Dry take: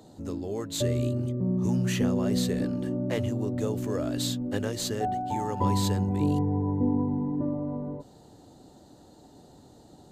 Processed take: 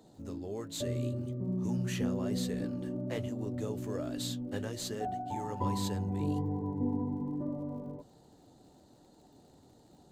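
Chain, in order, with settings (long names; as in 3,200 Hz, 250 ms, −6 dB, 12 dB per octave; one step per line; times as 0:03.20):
flanger 1.2 Hz, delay 3.8 ms, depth 8.2 ms, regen −60%
surface crackle 71 per second −54 dBFS
level −3 dB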